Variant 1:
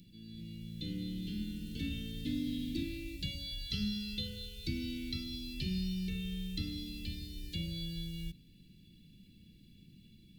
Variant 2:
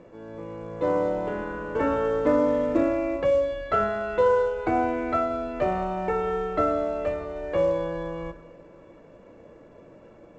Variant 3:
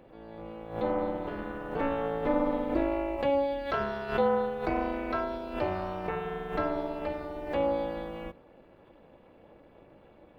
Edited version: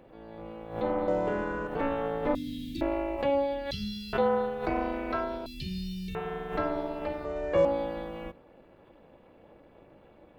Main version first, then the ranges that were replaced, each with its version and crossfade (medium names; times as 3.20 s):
3
1.08–1.67 s: from 2
2.35–2.81 s: from 1
3.71–4.13 s: from 1
5.46–6.15 s: from 1
7.25–7.65 s: from 2